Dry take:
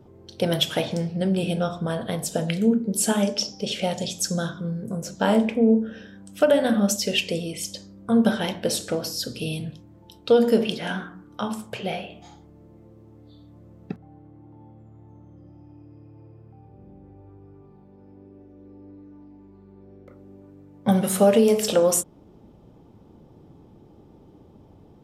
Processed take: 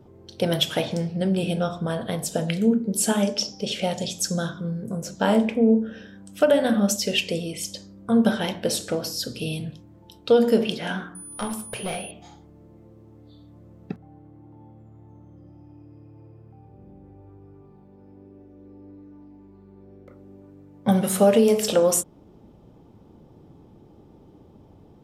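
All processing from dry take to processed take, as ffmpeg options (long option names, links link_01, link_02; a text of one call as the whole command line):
ffmpeg -i in.wav -filter_complex "[0:a]asettb=1/sr,asplit=3[link_01][link_02][link_03];[link_01]atrim=end=11.154[link_04];[link_02]atrim=start=11.15:end=12.11,asetpts=PTS-STARTPTS,afade=type=in:duration=0.004:curve=qsin,afade=type=out:start_time=0.956:duration=0.004:curve=qsin,equalizer=frequency=12000:width_type=o:width=0.42:gain=9.5,aeval=exprs='clip(val(0),-1,0.0376)':channel_layout=same,aeval=exprs='val(0)+0.0126*sin(2*PI*9900*n/s)':channel_layout=same[link_05];[link_03]atrim=start=12.106[link_06];[link_04][link_05]acrossfade=duration=0.004:curve1=hsin:curve2=qsin[link_07];[link_07][link_06]acrossfade=duration=0.004:curve1=qsin:curve2=hsin" out.wav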